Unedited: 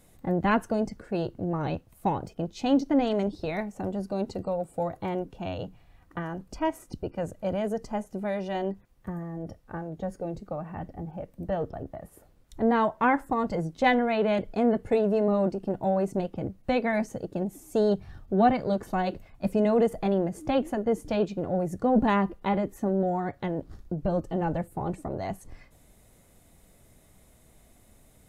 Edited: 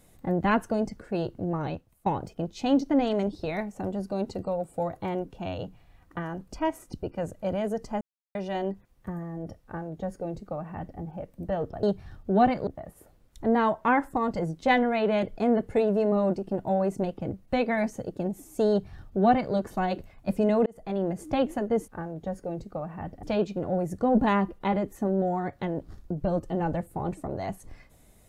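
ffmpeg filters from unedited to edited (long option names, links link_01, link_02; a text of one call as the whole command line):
ffmpeg -i in.wav -filter_complex "[0:a]asplit=9[link_01][link_02][link_03][link_04][link_05][link_06][link_07][link_08][link_09];[link_01]atrim=end=2.06,asetpts=PTS-STARTPTS,afade=type=out:start_time=1.55:duration=0.51:silence=0.158489[link_10];[link_02]atrim=start=2.06:end=8.01,asetpts=PTS-STARTPTS,afade=type=in:duration=0.004:curve=hsin:silence=0.158489,afade=type=out:start_time=5.946:duration=0.004:curve=hsin[link_11];[link_03]atrim=start=8.01:end=8.35,asetpts=PTS-STARTPTS,volume=0[link_12];[link_04]atrim=start=8.35:end=11.832,asetpts=PTS-STARTPTS,afade=type=in:duration=0.004:curve=hsin[link_13];[link_05]atrim=start=17.858:end=18.702[link_14];[link_06]atrim=start=11.828:end=19.82,asetpts=PTS-STARTPTS,afade=type=out:start_time=7.988:duration=0.004:curve=hsin[link_15];[link_07]atrim=start=19.82:end=21.042,asetpts=PTS-STARTPTS,afade=type=in:duration=0.48[link_16];[link_08]atrim=start=9.638:end=10.992[link_17];[link_09]atrim=start=21.038[link_18];[link_10][link_11][link_12][link_13]concat=n=4:v=0:a=1[link_19];[link_19][link_14]acrossfade=duration=0.004:curve1=hsin:curve2=hsin[link_20];[link_15][link_16]concat=n=2:v=0:a=1[link_21];[link_20][link_21]acrossfade=duration=0.004:curve1=hsin:curve2=hsin[link_22];[link_22][link_17]acrossfade=duration=0.004:curve1=hsin:curve2=hsin[link_23];[link_23][link_18]acrossfade=duration=0.004:curve1=hsin:curve2=hsin" out.wav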